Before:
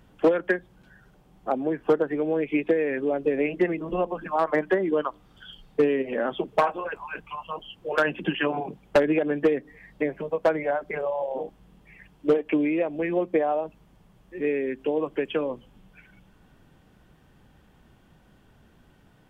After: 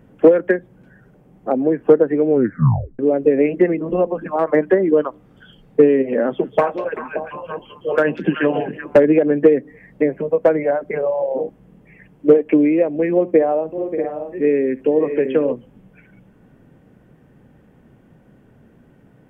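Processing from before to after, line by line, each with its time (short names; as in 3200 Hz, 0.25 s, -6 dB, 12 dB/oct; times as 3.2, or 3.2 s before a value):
2.28 tape stop 0.71 s
6.2–9.05 delay with a stepping band-pass 0.192 s, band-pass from 4100 Hz, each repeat -1.4 oct, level -3 dB
13.14–15.53 tapped delay 69/584/637/690 ms -19.5/-12/-9.5/-17.5 dB
whole clip: graphic EQ 125/250/500/2000/4000 Hz +9/+9/+10/+6/-8 dB; gain -2 dB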